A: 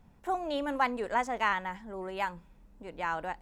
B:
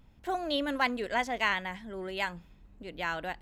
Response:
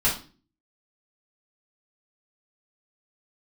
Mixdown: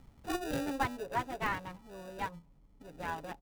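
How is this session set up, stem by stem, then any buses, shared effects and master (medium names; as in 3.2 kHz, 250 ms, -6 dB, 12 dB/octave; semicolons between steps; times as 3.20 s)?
-7.5 dB, 0.00 s, no send, local Wiener filter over 25 samples; comb 7.2 ms, depth 86%
+2.0 dB, 0.00 s, no send, sample-and-hold 41×; auto duck -15 dB, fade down 1.00 s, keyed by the first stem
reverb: none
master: none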